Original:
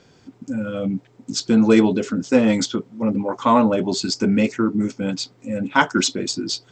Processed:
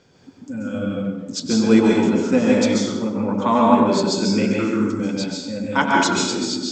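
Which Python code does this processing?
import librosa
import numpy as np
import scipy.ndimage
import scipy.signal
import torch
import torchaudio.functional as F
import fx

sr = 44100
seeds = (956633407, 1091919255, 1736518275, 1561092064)

p1 = x + fx.echo_tape(x, sr, ms=94, feedback_pct=69, wet_db=-6.5, lp_hz=1700.0, drive_db=5.0, wow_cents=37, dry=0)
p2 = fx.rev_plate(p1, sr, seeds[0], rt60_s=0.84, hf_ratio=0.85, predelay_ms=120, drr_db=-2.0)
y = F.gain(torch.from_numpy(p2), -3.5).numpy()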